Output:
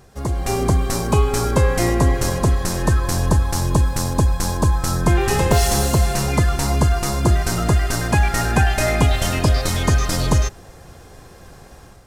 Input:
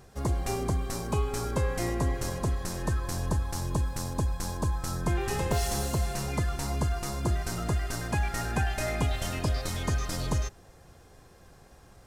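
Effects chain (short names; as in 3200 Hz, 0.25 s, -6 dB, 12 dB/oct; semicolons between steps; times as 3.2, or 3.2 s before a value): AGC gain up to 7.5 dB; gain +4.5 dB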